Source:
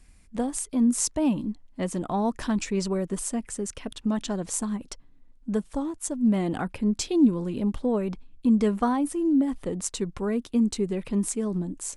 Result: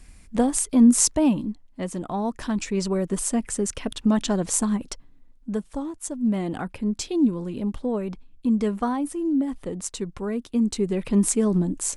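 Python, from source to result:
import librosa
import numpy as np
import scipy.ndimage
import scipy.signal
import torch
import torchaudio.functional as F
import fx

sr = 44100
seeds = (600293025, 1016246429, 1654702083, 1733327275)

y = fx.gain(x, sr, db=fx.line((1.02, 7.0), (1.65, -1.0), (2.37, -1.0), (3.45, 6.0), (4.77, 6.0), (5.57, -1.0), (10.44, -1.0), (11.3, 7.0)))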